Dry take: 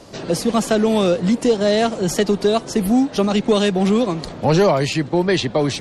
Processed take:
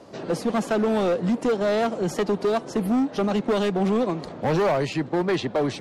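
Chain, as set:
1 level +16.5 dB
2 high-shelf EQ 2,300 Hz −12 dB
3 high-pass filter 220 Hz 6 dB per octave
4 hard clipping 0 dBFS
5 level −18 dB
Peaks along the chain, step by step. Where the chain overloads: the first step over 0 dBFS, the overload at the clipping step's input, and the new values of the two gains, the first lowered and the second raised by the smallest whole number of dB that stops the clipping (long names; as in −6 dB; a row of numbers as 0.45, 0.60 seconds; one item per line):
+10.0, +9.5, +9.0, 0.0, −18.0 dBFS
step 1, 9.0 dB
step 1 +7.5 dB, step 5 −9 dB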